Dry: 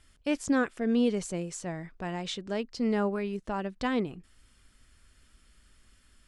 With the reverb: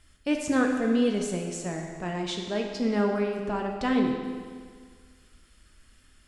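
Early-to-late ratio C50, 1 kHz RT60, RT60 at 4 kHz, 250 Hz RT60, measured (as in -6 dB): 3.5 dB, 1.8 s, 1.6 s, 1.8 s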